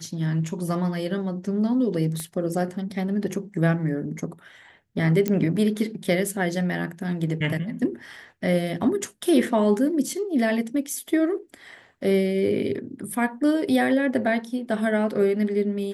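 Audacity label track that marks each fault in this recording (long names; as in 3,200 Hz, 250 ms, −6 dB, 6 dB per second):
2.200000	2.200000	click −20 dBFS
5.280000	5.280000	click −11 dBFS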